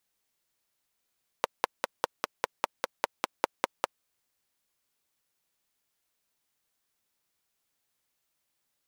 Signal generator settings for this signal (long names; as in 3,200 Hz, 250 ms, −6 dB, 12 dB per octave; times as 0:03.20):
pulse-train model of a single-cylinder engine, steady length 2.51 s, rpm 600, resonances 560/880 Hz